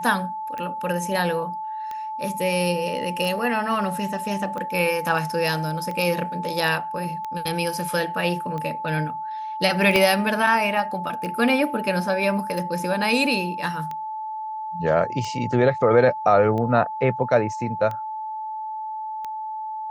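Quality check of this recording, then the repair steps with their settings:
tick 45 rpm -19 dBFS
whine 870 Hz -28 dBFS
9.96 s: pop -6 dBFS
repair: de-click; band-stop 870 Hz, Q 30

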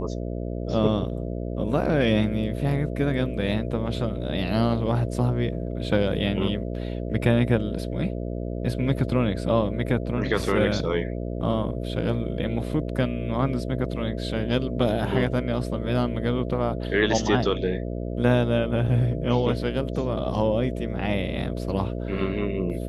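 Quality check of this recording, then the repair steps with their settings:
buzz 60 Hz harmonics 11 -30 dBFS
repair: de-hum 60 Hz, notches 11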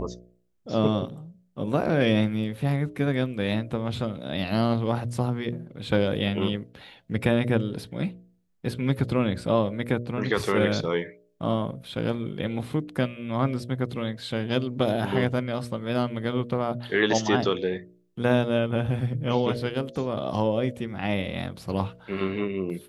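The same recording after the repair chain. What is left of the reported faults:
nothing left

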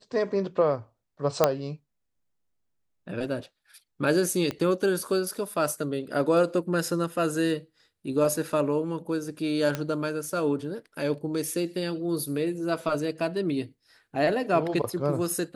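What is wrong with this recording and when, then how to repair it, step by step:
1.44 s: pop -5 dBFS
4.51 s: pop -17 dBFS
9.75 s: pop -14 dBFS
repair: de-click

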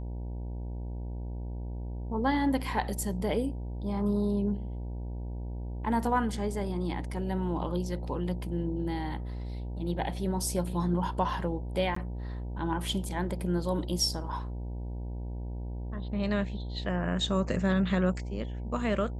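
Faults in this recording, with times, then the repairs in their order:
buzz 60 Hz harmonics 16 -36 dBFS
11.95–11.96 s: dropout 14 ms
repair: de-hum 60 Hz, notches 16; interpolate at 11.95 s, 14 ms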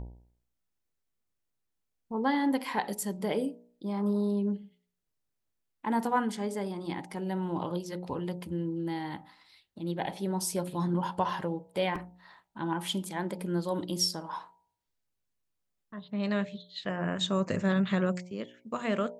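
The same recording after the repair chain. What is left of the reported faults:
nothing left

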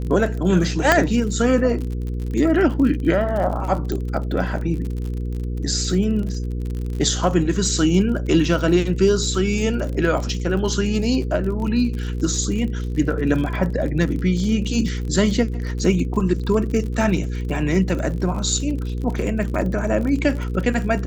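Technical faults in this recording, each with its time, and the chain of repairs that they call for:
crackle 49 per s -28 dBFS
hum 60 Hz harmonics 8 -25 dBFS
0.92 s: pop 0 dBFS
3.92 s: pop -13 dBFS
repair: de-click; de-hum 60 Hz, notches 8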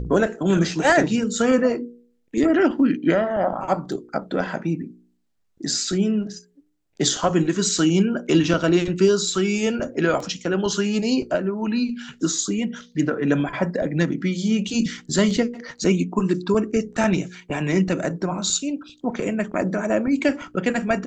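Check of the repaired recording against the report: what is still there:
3.92 s: pop

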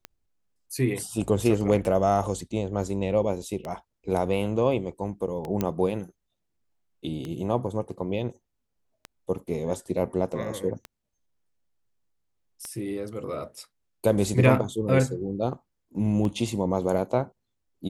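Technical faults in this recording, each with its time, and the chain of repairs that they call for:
tick 33 1/3 rpm -20 dBFS
5.61 s: pop -12 dBFS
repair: de-click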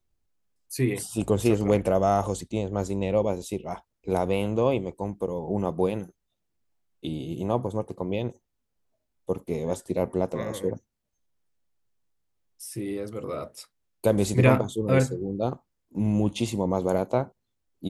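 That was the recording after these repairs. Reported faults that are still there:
nothing left

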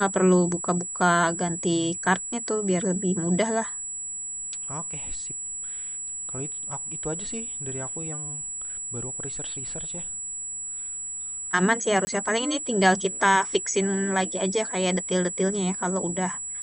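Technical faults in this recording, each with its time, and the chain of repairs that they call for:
whine 7.8 kHz -31 dBFS
12.05–12.07 s: dropout 20 ms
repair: band-stop 7.8 kHz, Q 30; interpolate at 12.05 s, 20 ms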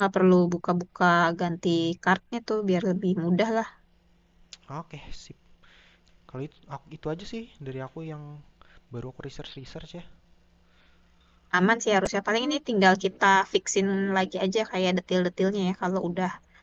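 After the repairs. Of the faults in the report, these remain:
nothing left

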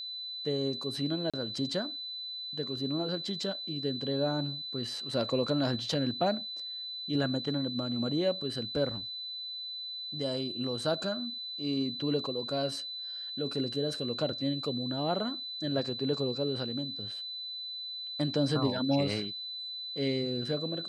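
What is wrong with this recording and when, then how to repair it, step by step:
whine 4 kHz -37 dBFS
1.30–1.34 s: dropout 36 ms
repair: band-stop 4 kHz, Q 30; interpolate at 1.30 s, 36 ms

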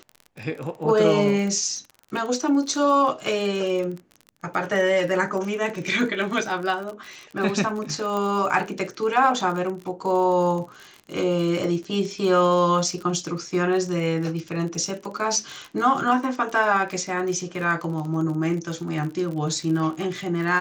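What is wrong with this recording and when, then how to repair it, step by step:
crackle 41 per s -30 dBFS
8.17 s: pop -16 dBFS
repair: de-click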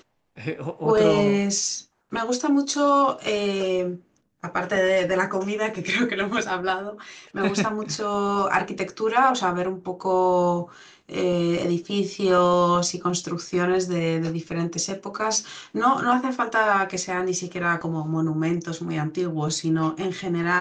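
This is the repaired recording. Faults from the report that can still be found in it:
8.17 s: pop

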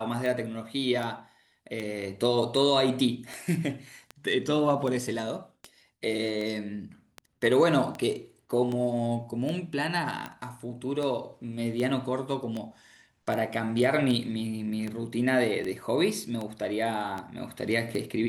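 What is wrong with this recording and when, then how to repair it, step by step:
tick 78 rpm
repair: de-click

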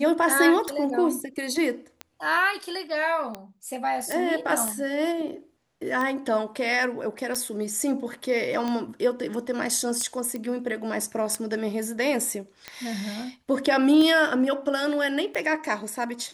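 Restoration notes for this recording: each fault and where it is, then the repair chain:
tick 45 rpm
4.12 s: pop
10.36 s: pop -20 dBFS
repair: de-click

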